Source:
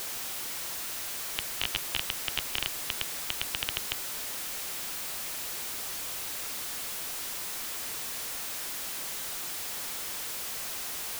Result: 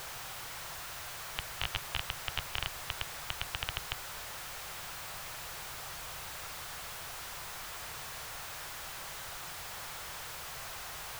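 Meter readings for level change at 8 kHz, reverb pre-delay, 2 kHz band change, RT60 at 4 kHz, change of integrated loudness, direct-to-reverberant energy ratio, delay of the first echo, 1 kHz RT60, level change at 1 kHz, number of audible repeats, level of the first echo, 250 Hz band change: -9.0 dB, no reverb, -2.5 dB, no reverb, -7.0 dB, no reverb, no echo, no reverb, +0.5 dB, no echo, no echo, -6.0 dB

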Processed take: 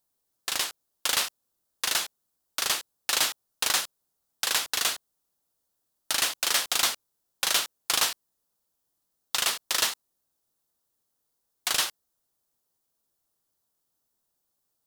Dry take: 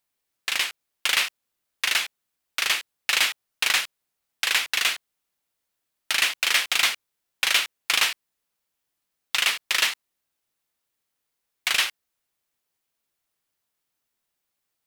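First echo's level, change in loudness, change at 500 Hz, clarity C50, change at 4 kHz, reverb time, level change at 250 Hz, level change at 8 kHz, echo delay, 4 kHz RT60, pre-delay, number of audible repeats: no echo, -3.5 dB, +2.0 dB, no reverb, -3.5 dB, no reverb, +2.5 dB, +1.5 dB, no echo, no reverb, no reverb, no echo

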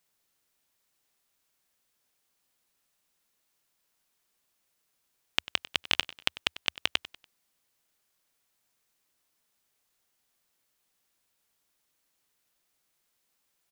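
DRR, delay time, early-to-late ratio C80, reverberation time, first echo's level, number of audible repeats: no reverb, 96 ms, no reverb, no reverb, -17.5 dB, 3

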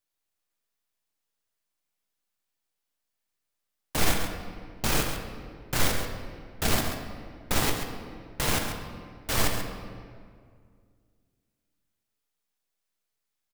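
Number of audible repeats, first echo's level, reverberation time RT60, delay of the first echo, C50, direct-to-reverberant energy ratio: 1, -9.0 dB, 2.1 s, 136 ms, 4.5 dB, 2.5 dB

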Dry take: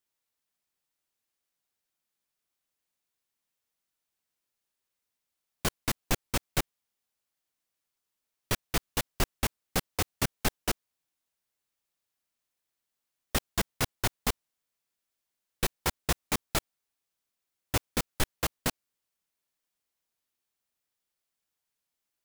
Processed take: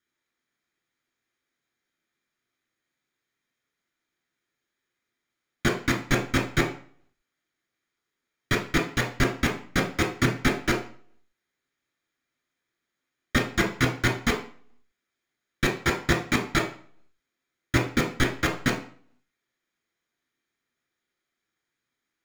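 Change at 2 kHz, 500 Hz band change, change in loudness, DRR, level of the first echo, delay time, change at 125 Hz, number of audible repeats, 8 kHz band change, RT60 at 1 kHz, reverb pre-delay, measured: +10.5 dB, +8.0 dB, +6.0 dB, 1.0 dB, no echo, no echo, +8.0 dB, no echo, -1.5 dB, 0.50 s, 3 ms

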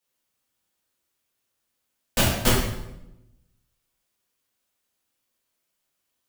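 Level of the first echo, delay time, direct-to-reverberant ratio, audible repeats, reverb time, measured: no echo, no echo, -7.5 dB, no echo, 0.90 s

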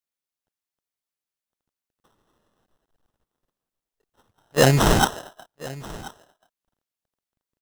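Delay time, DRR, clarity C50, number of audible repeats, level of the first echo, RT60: 1033 ms, no reverb, no reverb, 1, -19.0 dB, no reverb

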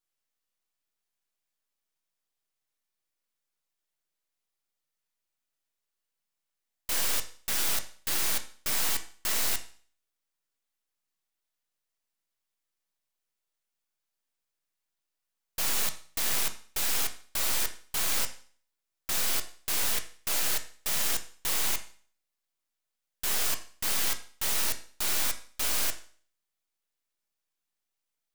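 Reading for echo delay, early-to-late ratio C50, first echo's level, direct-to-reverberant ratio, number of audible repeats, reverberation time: no echo, 13.0 dB, no echo, 6.5 dB, no echo, 0.45 s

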